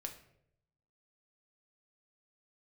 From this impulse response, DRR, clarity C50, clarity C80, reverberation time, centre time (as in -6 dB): 3.0 dB, 10.5 dB, 14.0 dB, 0.75 s, 14 ms